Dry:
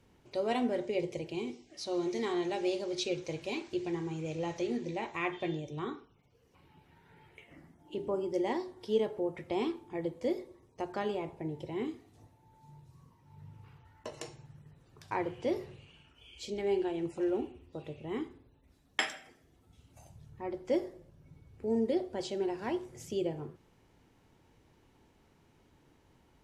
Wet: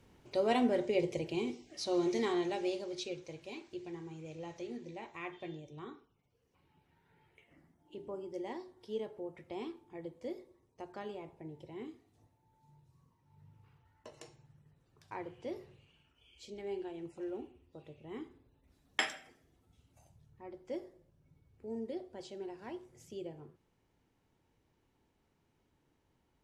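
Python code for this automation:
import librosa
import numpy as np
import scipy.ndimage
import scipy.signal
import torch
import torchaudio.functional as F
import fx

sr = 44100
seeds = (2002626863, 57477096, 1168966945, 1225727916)

y = fx.gain(x, sr, db=fx.line((2.16, 1.5), (3.33, -9.5), (17.98, -9.5), (19.03, -1.0), (20.26, -10.5)))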